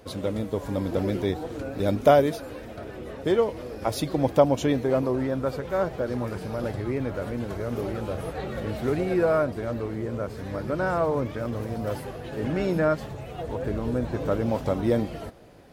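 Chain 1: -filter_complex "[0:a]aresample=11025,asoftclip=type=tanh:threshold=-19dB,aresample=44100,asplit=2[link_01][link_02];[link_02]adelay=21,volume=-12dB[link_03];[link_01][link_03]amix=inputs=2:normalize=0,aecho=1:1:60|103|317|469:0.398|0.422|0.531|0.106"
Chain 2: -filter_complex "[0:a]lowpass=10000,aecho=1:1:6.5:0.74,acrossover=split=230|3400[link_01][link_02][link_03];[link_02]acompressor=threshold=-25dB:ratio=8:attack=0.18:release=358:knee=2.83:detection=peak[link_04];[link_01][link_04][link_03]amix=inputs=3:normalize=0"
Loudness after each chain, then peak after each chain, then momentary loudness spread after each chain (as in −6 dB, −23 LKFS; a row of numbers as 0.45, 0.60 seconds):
−27.0, −30.0 LKFS; −12.0, −13.0 dBFS; 7, 7 LU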